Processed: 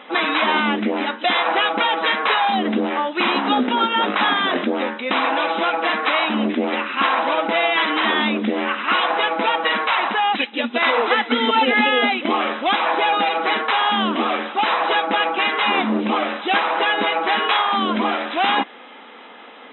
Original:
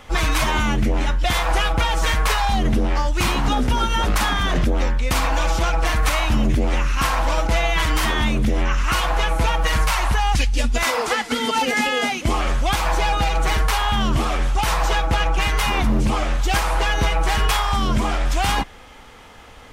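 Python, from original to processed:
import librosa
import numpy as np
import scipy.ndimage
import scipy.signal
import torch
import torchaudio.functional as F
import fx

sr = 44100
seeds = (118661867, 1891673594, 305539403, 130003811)

y = fx.brickwall_bandpass(x, sr, low_hz=200.0, high_hz=4000.0)
y = F.gain(torch.from_numpy(y), 4.0).numpy()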